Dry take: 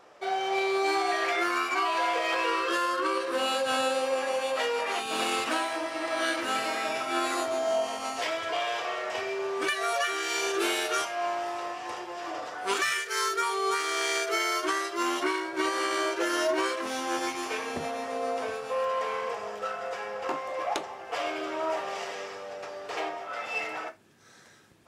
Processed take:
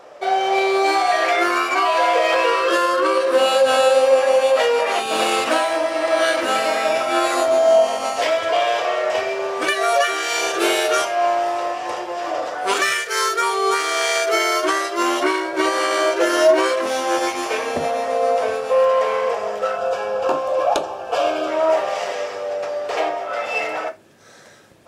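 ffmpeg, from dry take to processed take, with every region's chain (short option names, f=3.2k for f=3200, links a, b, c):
-filter_complex "[0:a]asettb=1/sr,asplit=3[a][b][c];[a]atrim=end=19.774[d];[b]atrim=start=19.77:end=21.48,asetpts=PTS-STARTPTS,afade=t=in:d=0.004:c=qsin,afade=t=out:st=1.706:d=0.004:c=qsin,asuperstop=centerf=2000:order=4:qfactor=3.6,lowshelf=f=120:g=7.5[e];[c]atrim=start=21.476[f];[d][e]acrossfade=d=0.004:c1=hsin:c2=qsin[g];[g][f]acrossfade=d=0.004:c1=qsin:c2=hsin,equalizer=f=580:t=o:w=0.59:g=8.5,bandreject=f=65.54:t=h:w=4,bandreject=f=131.08:t=h:w=4,bandreject=f=196.62:t=h:w=4,bandreject=f=262.16:t=h:w=4,bandreject=f=327.7:t=h:w=4,bandreject=f=393.24:t=h:w=4,volume=8dB"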